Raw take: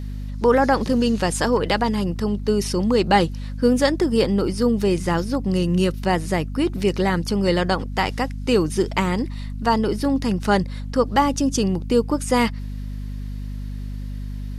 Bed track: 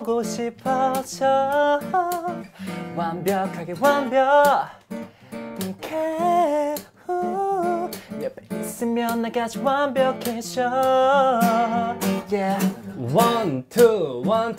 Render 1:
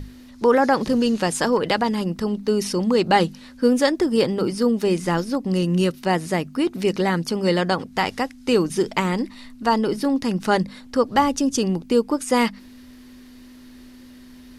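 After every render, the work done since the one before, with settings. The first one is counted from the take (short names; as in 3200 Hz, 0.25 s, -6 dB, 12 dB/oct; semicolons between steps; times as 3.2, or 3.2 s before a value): notches 50/100/150/200 Hz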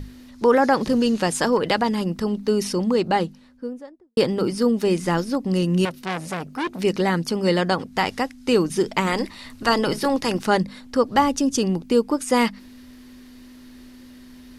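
2.54–4.17 studio fade out; 5.85–6.79 core saturation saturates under 1900 Hz; 9.06–10.44 spectral limiter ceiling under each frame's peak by 14 dB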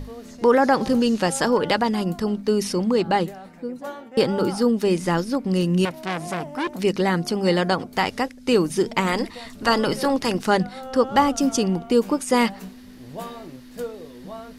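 add bed track -17 dB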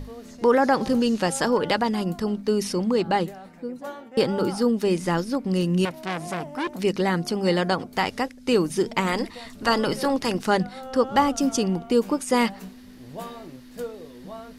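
gain -2 dB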